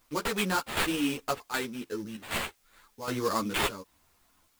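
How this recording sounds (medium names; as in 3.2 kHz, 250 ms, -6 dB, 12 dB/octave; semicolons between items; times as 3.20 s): aliases and images of a low sample rate 5.8 kHz, jitter 20%; chopped level 1.3 Hz, depth 65%, duty 80%; a quantiser's noise floor 12-bit, dither triangular; a shimmering, thickened sound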